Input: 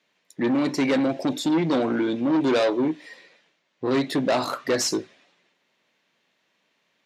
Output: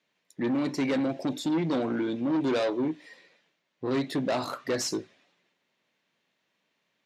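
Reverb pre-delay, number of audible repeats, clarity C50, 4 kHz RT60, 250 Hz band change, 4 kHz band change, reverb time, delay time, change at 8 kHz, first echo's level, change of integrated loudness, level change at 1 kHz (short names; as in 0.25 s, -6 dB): none, none, none, none, -5.0 dB, -6.5 dB, none, none, -6.5 dB, none, -5.5 dB, -6.5 dB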